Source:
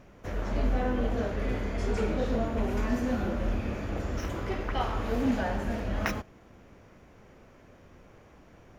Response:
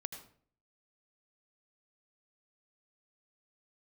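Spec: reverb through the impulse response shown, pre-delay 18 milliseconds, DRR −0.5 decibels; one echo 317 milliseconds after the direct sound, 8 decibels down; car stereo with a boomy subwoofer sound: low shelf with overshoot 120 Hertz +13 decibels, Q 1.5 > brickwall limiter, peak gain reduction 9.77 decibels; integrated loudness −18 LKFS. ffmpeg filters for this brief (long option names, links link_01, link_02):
-filter_complex "[0:a]aecho=1:1:317:0.398,asplit=2[link_01][link_02];[1:a]atrim=start_sample=2205,adelay=18[link_03];[link_02][link_03]afir=irnorm=-1:irlink=0,volume=2dB[link_04];[link_01][link_04]amix=inputs=2:normalize=0,lowshelf=frequency=120:width_type=q:width=1.5:gain=13,volume=4dB,alimiter=limit=-7.5dB:level=0:latency=1"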